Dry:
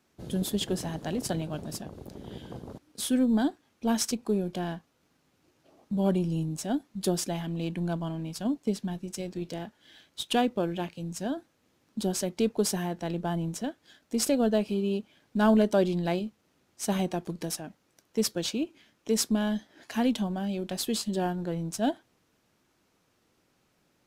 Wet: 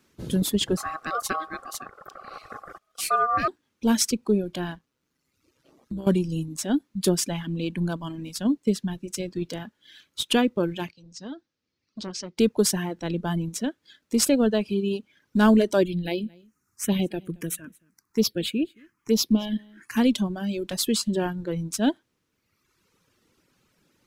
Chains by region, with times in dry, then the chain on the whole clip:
0.77–3.48 HPF 130 Hz 24 dB/oct + low shelf 170 Hz +7.5 dB + ring modulator 950 Hz
4.75–6.07 AM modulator 130 Hz, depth 35% + compressor 16:1, threshold -33 dBFS
10.91–12.38 ladder low-pass 6100 Hz, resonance 45% + notch 990 Hz, Q 28 + core saturation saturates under 620 Hz
15.83–19.97 high shelf 12000 Hz +3.5 dB + envelope phaser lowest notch 530 Hz, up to 1700 Hz, full sweep at -22 dBFS + echo 0.222 s -16.5 dB
whole clip: reverb removal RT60 1.2 s; bell 720 Hz -8.5 dB 0.51 oct; gain +6.5 dB

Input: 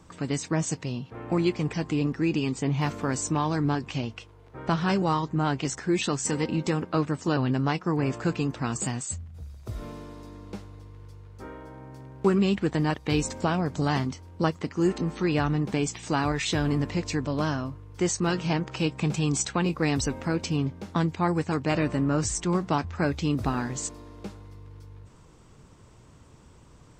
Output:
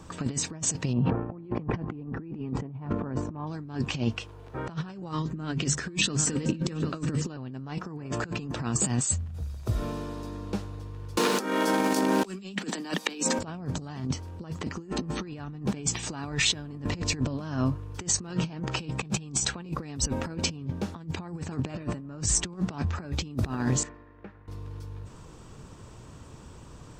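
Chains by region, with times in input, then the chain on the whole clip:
0.93–3.47 LPF 1300 Hz + backwards sustainer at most 34 dB/s
5.11–7.3 bell 830 Hz -10 dB 0.66 oct + notches 50/100/150/200/250 Hz + echo 0.763 s -17 dB
11.17–13.39 steep high-pass 180 Hz 96 dB/oct + high shelf 2200 Hz +12 dB + three-band squash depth 100%
23.83–24.48 expander -36 dBFS + synth low-pass 1900 Hz, resonance Q 3.9 + compressor 10:1, threshold -45 dBFS
whole clip: notch 2100 Hz, Q 13; dynamic EQ 170 Hz, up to +5 dB, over -35 dBFS, Q 0.75; negative-ratio compressor -29 dBFS, ratio -0.5

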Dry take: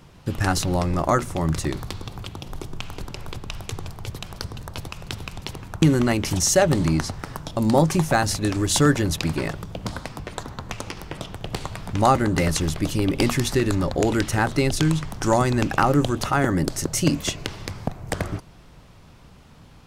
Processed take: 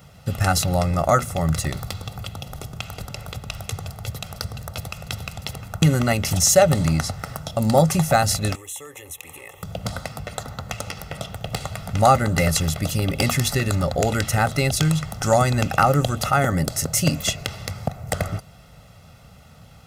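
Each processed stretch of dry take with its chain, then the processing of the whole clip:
8.55–9.63 tone controls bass -14 dB, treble +5 dB + fixed phaser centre 970 Hz, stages 8 + compressor 4:1, threshold -38 dBFS
whole clip: HPF 61 Hz; high shelf 12000 Hz +11.5 dB; comb 1.5 ms, depth 71%

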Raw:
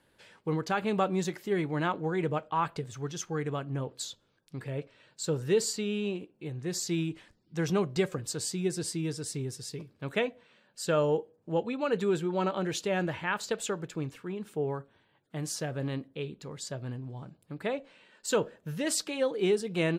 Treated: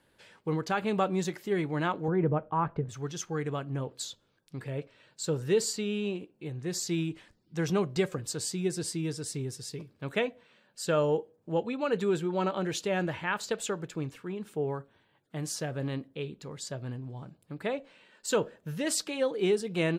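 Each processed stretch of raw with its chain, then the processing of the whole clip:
2.08–2.89 LPF 1700 Hz + tilt -2 dB/oct
whole clip: dry

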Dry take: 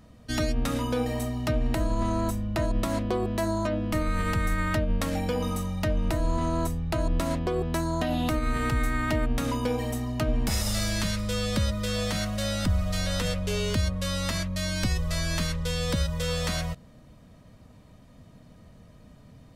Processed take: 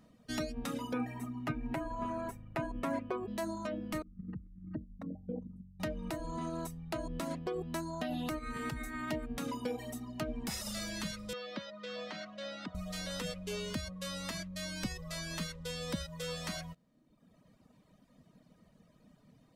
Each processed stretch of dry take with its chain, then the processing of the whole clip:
0.93–3.28 resonant high shelf 2900 Hz -9 dB, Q 1.5 + comb 7.3 ms, depth 77%
4.02–5.8 formant sharpening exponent 3 + HPF 100 Hz 6 dB/oct
11.33–12.75 BPF 290–4700 Hz + air absorption 89 m
whole clip: reverb removal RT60 1.1 s; resonant low shelf 130 Hz -8 dB, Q 1.5; gain -8 dB

